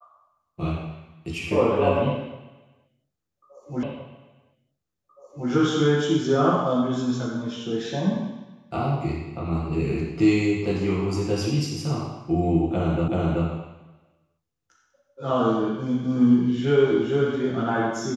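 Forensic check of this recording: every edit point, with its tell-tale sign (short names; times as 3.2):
3.83 repeat of the last 1.67 s
13.08 repeat of the last 0.38 s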